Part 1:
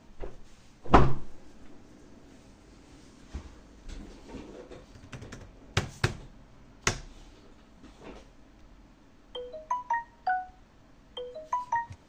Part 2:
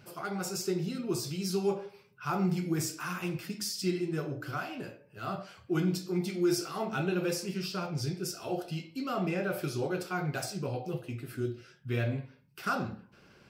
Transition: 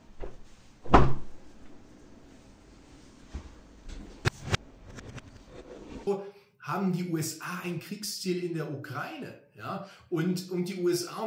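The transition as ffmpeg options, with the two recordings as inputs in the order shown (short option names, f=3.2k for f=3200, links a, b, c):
-filter_complex "[0:a]apad=whole_dur=11.26,atrim=end=11.26,asplit=2[a][b];[a]atrim=end=4.252[c];[b]atrim=start=4.248:end=6.072,asetpts=PTS-STARTPTS,areverse[d];[1:a]atrim=start=1.648:end=6.84[e];[c][d]acrossfade=d=0.004:c1=hsin:c2=hsin[f];[f][e]acrossfade=d=0.004:c1=hsin:c2=hsin"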